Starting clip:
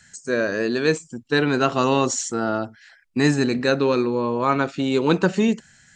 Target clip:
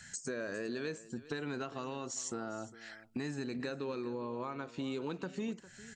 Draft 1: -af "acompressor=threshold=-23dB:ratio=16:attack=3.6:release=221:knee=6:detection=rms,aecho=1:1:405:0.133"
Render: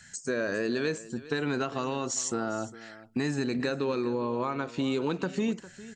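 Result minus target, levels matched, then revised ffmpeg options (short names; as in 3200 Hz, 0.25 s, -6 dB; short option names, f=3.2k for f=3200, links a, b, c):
compressor: peak gain reduction -9.5 dB
-af "acompressor=threshold=-33dB:ratio=16:attack=3.6:release=221:knee=6:detection=rms,aecho=1:1:405:0.133"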